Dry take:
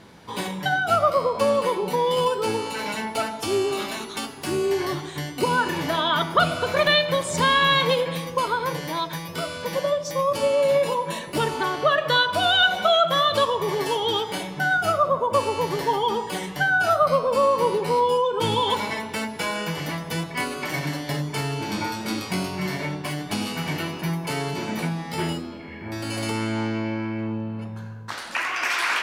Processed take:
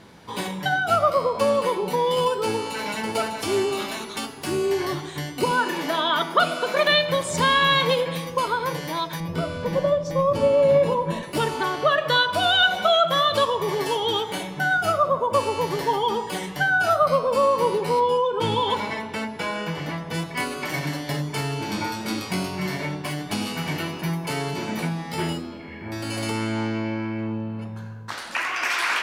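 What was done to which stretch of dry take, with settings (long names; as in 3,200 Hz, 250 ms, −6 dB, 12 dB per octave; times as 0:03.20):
0:02.43–0:03.04: delay throw 600 ms, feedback 25%, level −6 dB
0:05.51–0:06.92: Butterworth high-pass 190 Hz
0:09.20–0:11.23: spectral tilt −3 dB per octave
0:14.06–0:14.76: notch filter 5,000 Hz, Q 11
0:17.99–0:20.13: low-pass filter 4,800 Hz → 2,700 Hz 6 dB per octave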